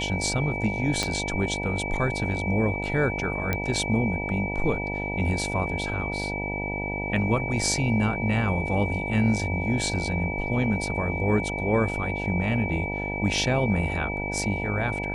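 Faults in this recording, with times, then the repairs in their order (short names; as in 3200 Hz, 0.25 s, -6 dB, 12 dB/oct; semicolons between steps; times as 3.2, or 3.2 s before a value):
buzz 50 Hz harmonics 19 -32 dBFS
tone 2300 Hz -31 dBFS
1.03 pop -10 dBFS
3.53 pop -11 dBFS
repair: de-click; de-hum 50 Hz, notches 19; notch 2300 Hz, Q 30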